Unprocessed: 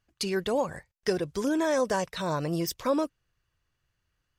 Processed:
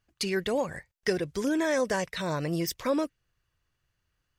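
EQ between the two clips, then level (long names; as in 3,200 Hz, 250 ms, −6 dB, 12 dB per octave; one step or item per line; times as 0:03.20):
dynamic equaliser 1,000 Hz, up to −4 dB, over −43 dBFS, Q 1.2
dynamic equaliser 2,000 Hz, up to +7 dB, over −53 dBFS, Q 2.3
0.0 dB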